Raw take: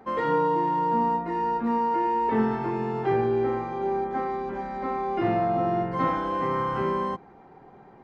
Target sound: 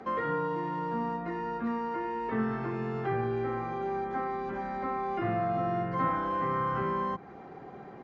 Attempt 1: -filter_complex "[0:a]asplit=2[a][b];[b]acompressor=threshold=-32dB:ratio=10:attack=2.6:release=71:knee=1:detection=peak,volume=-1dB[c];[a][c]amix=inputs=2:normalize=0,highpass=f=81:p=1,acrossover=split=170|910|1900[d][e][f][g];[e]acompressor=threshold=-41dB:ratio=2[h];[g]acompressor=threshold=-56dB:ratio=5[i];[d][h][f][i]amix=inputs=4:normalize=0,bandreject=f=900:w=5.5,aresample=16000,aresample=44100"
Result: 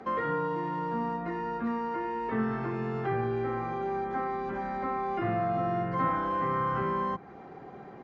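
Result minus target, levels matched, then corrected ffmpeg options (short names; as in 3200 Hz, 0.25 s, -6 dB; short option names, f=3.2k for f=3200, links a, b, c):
compressor: peak gain reduction -6 dB
-filter_complex "[0:a]asplit=2[a][b];[b]acompressor=threshold=-38.5dB:ratio=10:attack=2.6:release=71:knee=1:detection=peak,volume=-1dB[c];[a][c]amix=inputs=2:normalize=0,highpass=f=81:p=1,acrossover=split=170|910|1900[d][e][f][g];[e]acompressor=threshold=-41dB:ratio=2[h];[g]acompressor=threshold=-56dB:ratio=5[i];[d][h][f][i]amix=inputs=4:normalize=0,bandreject=f=900:w=5.5,aresample=16000,aresample=44100"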